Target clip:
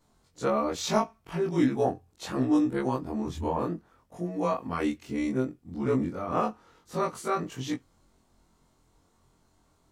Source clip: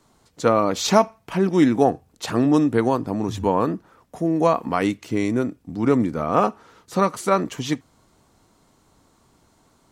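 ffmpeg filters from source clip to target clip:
ffmpeg -i in.wav -af "afftfilt=real='re':imag='-im':win_size=2048:overlap=0.75,lowshelf=frequency=62:gain=11,volume=-4.5dB" out.wav

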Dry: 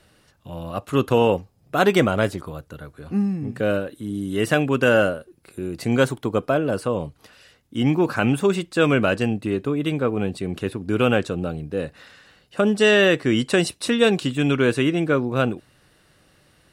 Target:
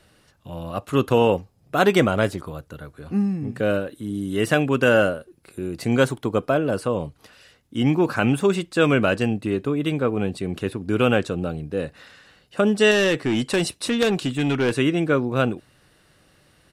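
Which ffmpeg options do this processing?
ffmpeg -i in.wav -filter_complex "[0:a]asettb=1/sr,asplit=3[link_01][link_02][link_03];[link_01]atrim=end=12.914[link_04];[link_02]atrim=start=12.91:end=14.77,asetpts=PTS-STARTPTS,afade=type=in:duration=0.004:curve=qsin,afade=type=out:start_time=1.856:duration=0.004:curve=qsin,aeval=exprs='0.531*(cos(1*acos(clip(val(0)/0.531,-1,1)))-cos(1*PI/2))+0.168*(cos(3*acos(clip(val(0)/0.531,-1,1)))-cos(3*PI/2))+0.106*(cos(5*acos(clip(val(0)/0.531,-1,1)))-cos(5*PI/2))':channel_layout=same[link_05];[link_03]atrim=start=14.766[link_06];[link_04][link_05]acrossfade=duration=0.004:curve1=hsin:curve2=qsin[link_07];[link_07][link_06]acrossfade=duration=0.004:curve1=qsin:curve2=hsin,aresample=32000,aresample=44100" out.wav

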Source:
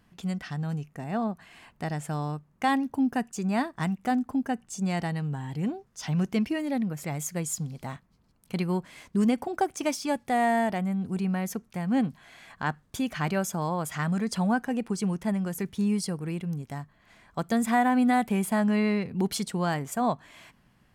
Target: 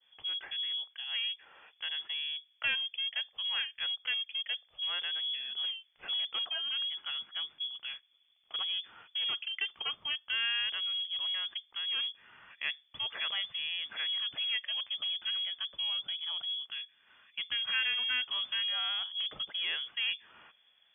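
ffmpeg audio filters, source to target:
ffmpeg -i in.wav -filter_complex "[0:a]adynamicequalizer=threshold=0.00891:dfrequency=1100:dqfactor=0.83:tfrequency=1100:tqfactor=0.83:attack=5:release=100:ratio=0.375:range=1.5:mode=cutabove:tftype=bell,acrossover=split=100|880[link_01][link_02][link_03];[link_02]asoftclip=type=hard:threshold=-28.5dB[link_04];[link_01][link_04][link_03]amix=inputs=3:normalize=0,lowpass=frequency=3000:width_type=q:width=0.5098,lowpass=frequency=3000:width_type=q:width=0.6013,lowpass=frequency=3000:width_type=q:width=0.9,lowpass=frequency=3000:width_type=q:width=2.563,afreqshift=-3500,volume=-4.5dB" out.wav

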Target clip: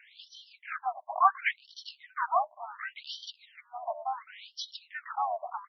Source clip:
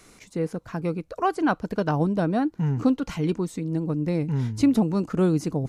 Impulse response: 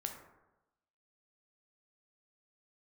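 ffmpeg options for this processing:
-filter_complex "[0:a]asplit=4[link_01][link_02][link_03][link_04];[link_02]asetrate=37084,aresample=44100,atempo=1.18921,volume=-11dB[link_05];[link_03]asetrate=66075,aresample=44100,atempo=0.66742,volume=0dB[link_06];[link_04]asetrate=88200,aresample=44100,atempo=0.5,volume=-17dB[link_07];[link_01][link_05][link_06][link_07]amix=inputs=4:normalize=0,afftfilt=real='re*between(b*sr/1024,790*pow(4300/790,0.5+0.5*sin(2*PI*0.7*pts/sr))/1.41,790*pow(4300/790,0.5+0.5*sin(2*PI*0.7*pts/sr))*1.41)':imag='im*between(b*sr/1024,790*pow(4300/790,0.5+0.5*sin(2*PI*0.7*pts/sr))/1.41,790*pow(4300/790,0.5+0.5*sin(2*PI*0.7*pts/sr))*1.41)':win_size=1024:overlap=0.75,volume=1dB"

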